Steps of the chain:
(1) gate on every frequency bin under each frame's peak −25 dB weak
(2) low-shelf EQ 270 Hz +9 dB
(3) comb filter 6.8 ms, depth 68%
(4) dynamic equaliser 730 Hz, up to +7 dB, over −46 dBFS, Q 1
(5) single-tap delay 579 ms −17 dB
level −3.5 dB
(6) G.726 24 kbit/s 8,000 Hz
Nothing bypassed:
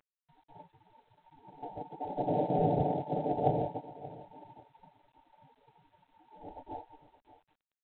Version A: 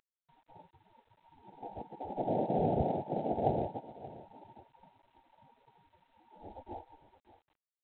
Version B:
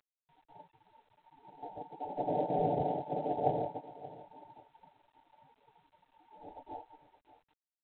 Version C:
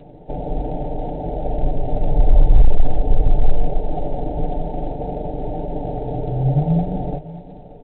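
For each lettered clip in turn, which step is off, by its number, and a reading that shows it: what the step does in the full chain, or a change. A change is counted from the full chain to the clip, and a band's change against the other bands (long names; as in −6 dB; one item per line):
3, 125 Hz band −1.5 dB
2, 125 Hz band −5.0 dB
1, 125 Hz band +9.5 dB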